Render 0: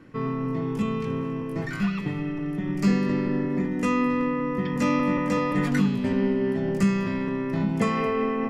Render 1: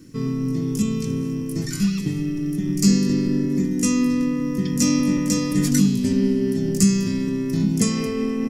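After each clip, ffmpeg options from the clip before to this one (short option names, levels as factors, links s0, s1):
-af "firequalizer=gain_entry='entry(310,0);entry(660,-17);entry(3400,-1);entry(5600,15)':delay=0.05:min_phase=1,volume=1.78"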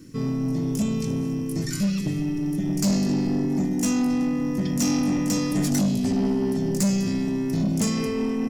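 -af "asoftclip=type=tanh:threshold=0.133"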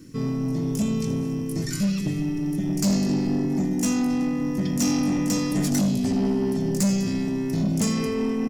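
-af "aecho=1:1:86:0.133"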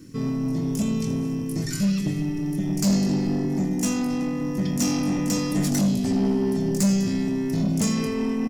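-filter_complex "[0:a]asplit=2[s0][s1];[s1]adelay=26,volume=0.251[s2];[s0][s2]amix=inputs=2:normalize=0"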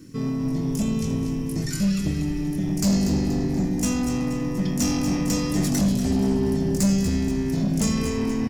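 -filter_complex "[0:a]asplit=6[s0][s1][s2][s3][s4][s5];[s1]adelay=239,afreqshift=-120,volume=0.335[s6];[s2]adelay=478,afreqshift=-240,volume=0.155[s7];[s3]adelay=717,afreqshift=-360,volume=0.0708[s8];[s4]adelay=956,afreqshift=-480,volume=0.0327[s9];[s5]adelay=1195,afreqshift=-600,volume=0.015[s10];[s0][s6][s7][s8][s9][s10]amix=inputs=6:normalize=0"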